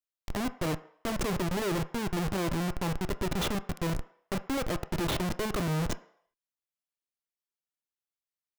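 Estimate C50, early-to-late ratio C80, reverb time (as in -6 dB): 16.5 dB, 19.5 dB, 0.65 s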